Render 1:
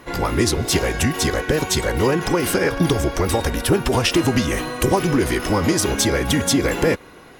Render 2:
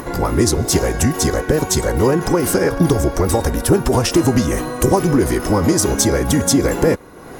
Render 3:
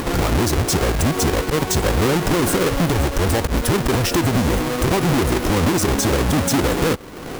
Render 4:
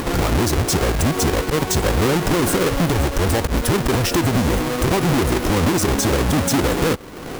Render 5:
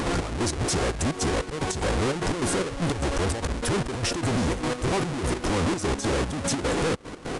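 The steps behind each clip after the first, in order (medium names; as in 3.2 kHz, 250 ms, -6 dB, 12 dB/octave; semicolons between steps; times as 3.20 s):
peaking EQ 2.9 kHz -11 dB 1.6 oct; upward compressor, threshold -26 dBFS; dynamic bell 6.4 kHz, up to +4 dB, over -37 dBFS, Q 1.3; trim +4 dB
square wave that keeps the level; peak limiter -9 dBFS, peak gain reduction 26 dB; compression 2:1, threshold -19 dBFS, peak gain reduction 5 dB
no audible change
trance gate "xx..x.xxx.x." 149 bpm -12 dB; saturation -22.5 dBFS, distortion -10 dB; resampled via 22.05 kHz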